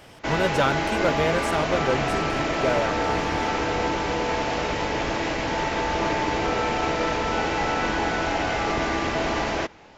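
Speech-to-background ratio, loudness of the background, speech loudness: -2.0 dB, -25.0 LUFS, -27.0 LUFS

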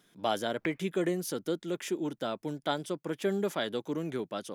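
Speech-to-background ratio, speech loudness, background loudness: 10.0 dB, -33.5 LUFS, -43.5 LUFS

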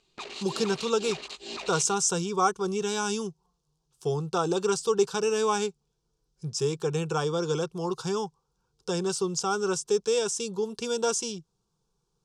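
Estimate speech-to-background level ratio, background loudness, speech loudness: 10.5 dB, -38.5 LUFS, -28.0 LUFS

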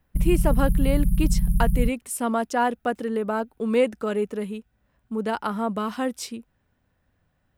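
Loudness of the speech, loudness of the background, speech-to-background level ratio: -26.5 LUFS, -25.0 LUFS, -1.5 dB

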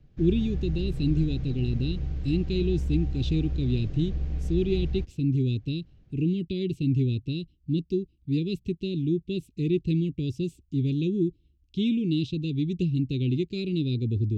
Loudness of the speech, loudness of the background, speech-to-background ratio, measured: -28.5 LUFS, -33.0 LUFS, 4.5 dB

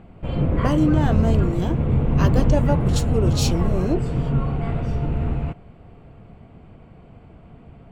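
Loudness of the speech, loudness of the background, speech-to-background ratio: -25.5 LUFS, -22.0 LUFS, -3.5 dB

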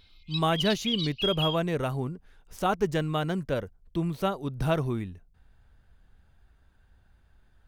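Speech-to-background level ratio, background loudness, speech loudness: 2.0 dB, -31.5 LUFS, -29.5 LUFS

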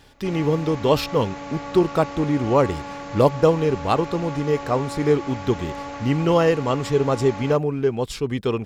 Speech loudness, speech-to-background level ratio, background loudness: -22.0 LUFS, 12.0 dB, -34.0 LUFS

